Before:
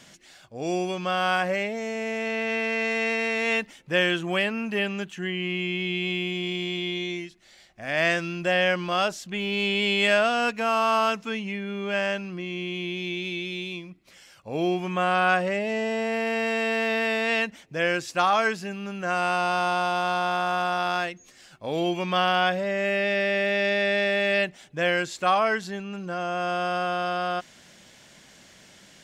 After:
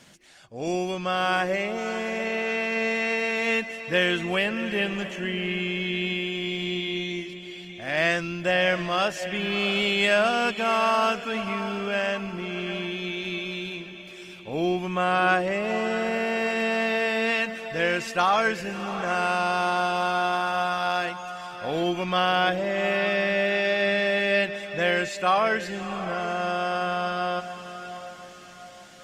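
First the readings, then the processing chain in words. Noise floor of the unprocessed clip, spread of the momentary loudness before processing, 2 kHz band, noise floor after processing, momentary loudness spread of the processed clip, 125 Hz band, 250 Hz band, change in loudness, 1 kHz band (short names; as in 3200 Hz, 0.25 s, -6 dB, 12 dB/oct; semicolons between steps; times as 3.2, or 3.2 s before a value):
-53 dBFS, 9 LU, +0.5 dB, -44 dBFS, 12 LU, 0.0 dB, +0.5 dB, +0.5 dB, +0.5 dB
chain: diffused feedback echo 0.683 s, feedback 41%, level -11 dB; Opus 24 kbps 48000 Hz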